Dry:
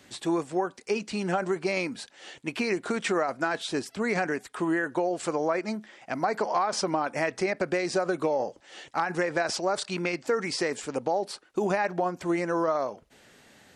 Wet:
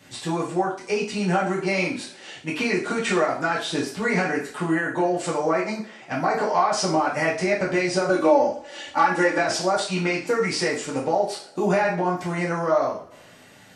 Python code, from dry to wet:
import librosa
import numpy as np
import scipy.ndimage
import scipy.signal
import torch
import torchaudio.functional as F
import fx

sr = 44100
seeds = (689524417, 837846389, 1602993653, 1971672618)

y = fx.comb(x, sr, ms=3.5, depth=0.92, at=(8.09, 9.38))
y = fx.rev_double_slope(y, sr, seeds[0], early_s=0.41, late_s=1.8, knee_db=-26, drr_db=-6.5)
y = y * librosa.db_to_amplitude(-1.5)